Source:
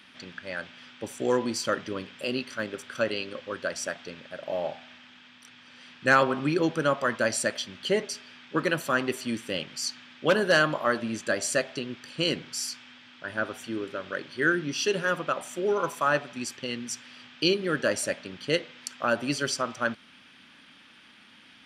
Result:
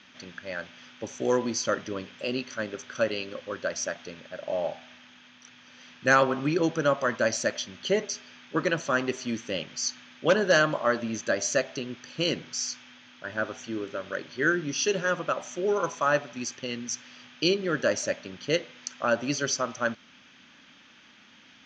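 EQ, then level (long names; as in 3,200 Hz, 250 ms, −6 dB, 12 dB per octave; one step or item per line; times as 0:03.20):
low-pass with resonance 6,400 Hz, resonance Q 12
high-frequency loss of the air 170 metres
parametric band 590 Hz +2.5 dB 0.35 octaves
0.0 dB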